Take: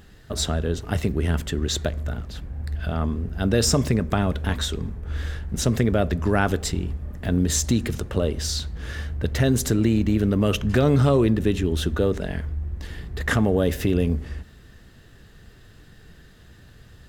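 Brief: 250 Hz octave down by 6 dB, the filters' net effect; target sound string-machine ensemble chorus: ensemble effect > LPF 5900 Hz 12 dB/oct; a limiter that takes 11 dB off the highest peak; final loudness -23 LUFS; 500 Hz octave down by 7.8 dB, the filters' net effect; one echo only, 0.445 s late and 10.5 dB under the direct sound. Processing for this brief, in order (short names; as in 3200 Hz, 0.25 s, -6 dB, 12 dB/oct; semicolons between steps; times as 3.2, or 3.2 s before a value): bell 250 Hz -6 dB; bell 500 Hz -8 dB; limiter -19.5 dBFS; echo 0.445 s -10.5 dB; ensemble effect; LPF 5900 Hz 12 dB/oct; gain +9.5 dB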